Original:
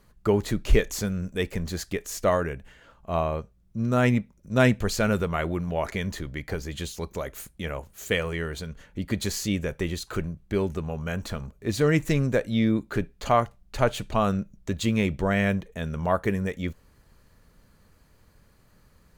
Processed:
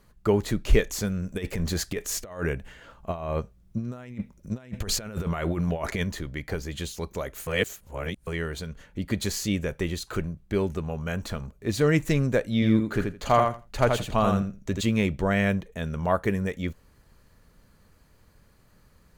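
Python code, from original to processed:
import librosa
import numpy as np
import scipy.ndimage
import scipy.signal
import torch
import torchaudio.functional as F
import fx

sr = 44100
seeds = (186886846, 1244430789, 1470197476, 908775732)

y = fx.over_compress(x, sr, threshold_db=-29.0, ratio=-0.5, at=(1.3, 6.04))
y = fx.echo_feedback(y, sr, ms=82, feedback_pct=15, wet_db=-4.5, at=(12.54, 14.81))
y = fx.edit(y, sr, fx.reverse_span(start_s=7.47, length_s=0.8), tone=tone)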